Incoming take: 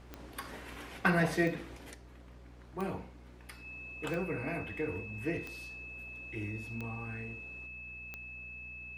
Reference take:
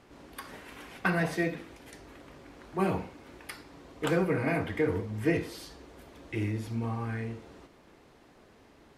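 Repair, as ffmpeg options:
ffmpeg -i in.wav -af "adeclick=threshold=4,bandreject=frequency=61:width_type=h:width=4,bandreject=frequency=122:width_type=h:width=4,bandreject=frequency=183:width_type=h:width=4,bandreject=frequency=244:width_type=h:width=4,bandreject=frequency=2600:width=30,asetnsamples=nb_out_samples=441:pad=0,asendcmd='1.94 volume volume 8.5dB',volume=0dB" out.wav

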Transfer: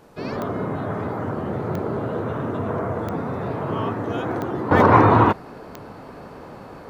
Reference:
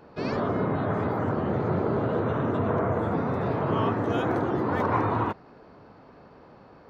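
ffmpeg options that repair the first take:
ffmpeg -i in.wav -af "adeclick=threshold=4,agate=range=-21dB:threshold=-32dB,asetnsamples=nb_out_samples=441:pad=0,asendcmd='4.71 volume volume -11.5dB',volume=0dB" out.wav

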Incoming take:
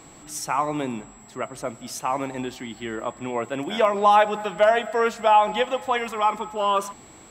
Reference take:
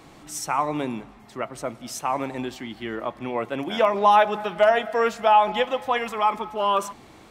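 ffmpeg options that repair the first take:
ffmpeg -i in.wav -af "bandreject=frequency=7700:width=30" out.wav

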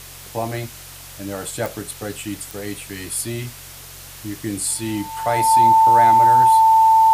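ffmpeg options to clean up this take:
ffmpeg -i in.wav -af "adeclick=threshold=4,bandreject=frequency=45.7:width_type=h:width=4,bandreject=frequency=91.4:width_type=h:width=4,bandreject=frequency=137.1:width_type=h:width=4,bandreject=frequency=890:width=30,afwtdn=0.013" out.wav

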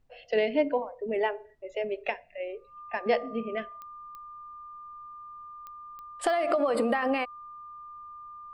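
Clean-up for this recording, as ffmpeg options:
ffmpeg -i in.wav -af "adeclick=threshold=4,bandreject=frequency=1200:width=30,agate=range=-21dB:threshold=-42dB" out.wav

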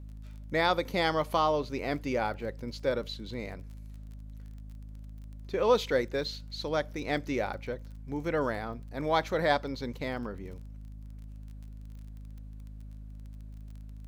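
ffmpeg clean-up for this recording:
ffmpeg -i in.wav -af "adeclick=threshold=4,bandreject=frequency=52.3:width_type=h:width=4,bandreject=frequency=104.6:width_type=h:width=4,bandreject=frequency=156.9:width_type=h:width=4,bandreject=frequency=209.2:width_type=h:width=4,bandreject=frequency=261.5:width_type=h:width=4" out.wav

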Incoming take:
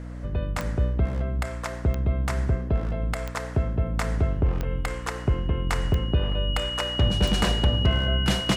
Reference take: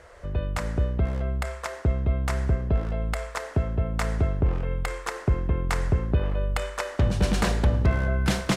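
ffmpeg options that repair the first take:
ffmpeg -i in.wav -af "adeclick=threshold=4,bandreject=frequency=60.3:width_type=h:width=4,bandreject=frequency=120.6:width_type=h:width=4,bandreject=frequency=180.9:width_type=h:width=4,bandreject=frequency=241.2:width_type=h:width=4,bandreject=frequency=301.5:width_type=h:width=4,bandreject=frequency=2900:width=30" out.wav

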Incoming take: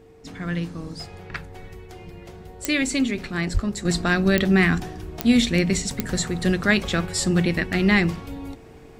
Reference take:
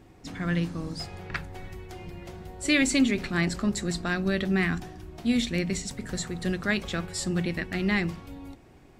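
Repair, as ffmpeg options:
ffmpeg -i in.wav -filter_complex "[0:a]adeclick=threshold=4,bandreject=frequency=450:width=30,asplit=3[link_01][link_02][link_03];[link_01]afade=type=out:start_time=3.53:duration=0.02[link_04];[link_02]highpass=frequency=140:width=0.5412,highpass=frequency=140:width=1.3066,afade=type=in:start_time=3.53:duration=0.02,afade=type=out:start_time=3.65:duration=0.02[link_05];[link_03]afade=type=in:start_time=3.65:duration=0.02[link_06];[link_04][link_05][link_06]amix=inputs=3:normalize=0,asetnsamples=nb_out_samples=441:pad=0,asendcmd='3.85 volume volume -7.5dB',volume=0dB" out.wav

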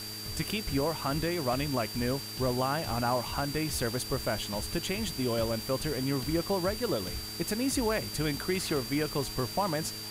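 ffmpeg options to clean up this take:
ffmpeg -i in.wav -af "adeclick=threshold=4,bandreject=frequency=106:width_type=h:width=4,bandreject=frequency=212:width_type=h:width=4,bandreject=frequency=318:width_type=h:width=4,bandreject=frequency=424:width_type=h:width=4,bandreject=frequency=4700:width=30,afwtdn=0.0071" out.wav

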